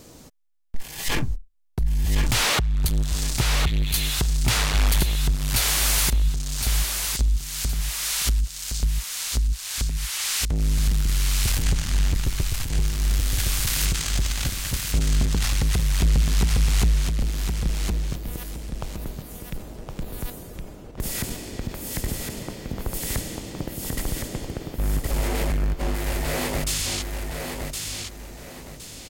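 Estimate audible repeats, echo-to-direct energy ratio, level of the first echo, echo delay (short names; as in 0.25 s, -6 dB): 3, -4.5 dB, -5.0 dB, 1.065 s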